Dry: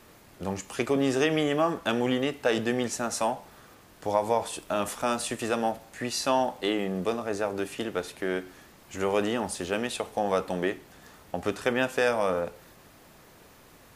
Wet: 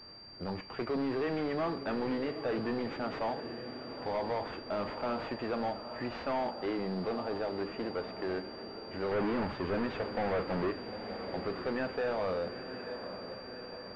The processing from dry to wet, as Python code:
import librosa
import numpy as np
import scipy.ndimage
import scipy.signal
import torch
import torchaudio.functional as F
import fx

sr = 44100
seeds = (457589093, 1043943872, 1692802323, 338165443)

p1 = fx.halfwave_hold(x, sr, at=(9.11, 10.71))
p2 = p1 + fx.echo_diffused(p1, sr, ms=894, feedback_pct=61, wet_db=-14, dry=0)
p3 = 10.0 ** (-25.5 / 20.0) * np.tanh(p2 / 10.0 ** (-25.5 / 20.0))
p4 = fx.pwm(p3, sr, carrier_hz=4700.0)
y = p4 * librosa.db_to_amplitude(-2.5)